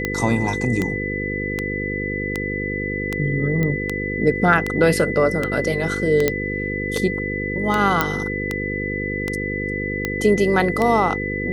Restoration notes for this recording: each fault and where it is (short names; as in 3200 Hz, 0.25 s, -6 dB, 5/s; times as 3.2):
buzz 50 Hz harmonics 10 -27 dBFS
tick 78 rpm -8 dBFS
tone 2000 Hz -26 dBFS
3.63 pop -11 dBFS
6.28 pop -3 dBFS
8.01 pop -3 dBFS